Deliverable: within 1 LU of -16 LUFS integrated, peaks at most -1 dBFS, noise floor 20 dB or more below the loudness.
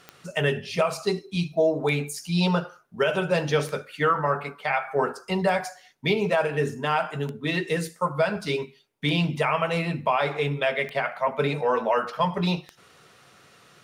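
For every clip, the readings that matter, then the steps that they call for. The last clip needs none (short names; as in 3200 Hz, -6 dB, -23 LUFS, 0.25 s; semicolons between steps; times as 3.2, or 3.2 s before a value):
clicks 8; loudness -25.5 LUFS; peak -9.0 dBFS; loudness target -16.0 LUFS
-> de-click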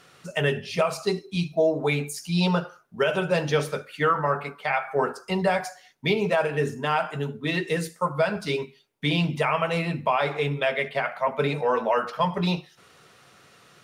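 clicks 0; loudness -25.5 LUFS; peak -9.0 dBFS; loudness target -16.0 LUFS
-> gain +9.5 dB; limiter -1 dBFS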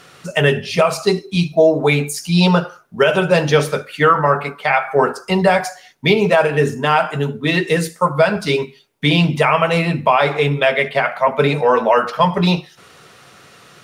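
loudness -16.0 LUFS; peak -1.0 dBFS; noise floor -47 dBFS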